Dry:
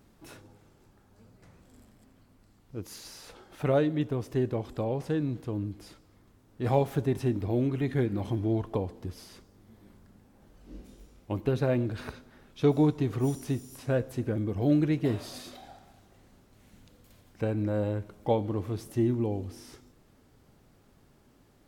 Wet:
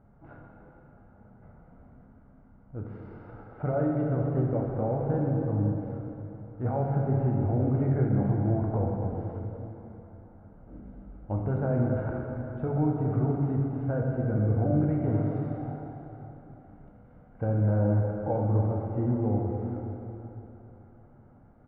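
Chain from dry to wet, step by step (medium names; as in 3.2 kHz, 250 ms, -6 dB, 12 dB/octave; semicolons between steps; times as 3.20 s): CVSD coder 64 kbps; low-pass 1.4 kHz 24 dB/octave; comb 1.4 ms, depth 44%; peak limiter -22 dBFS, peak gain reduction 9 dB; plate-style reverb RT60 3.5 s, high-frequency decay 0.8×, DRR -1.5 dB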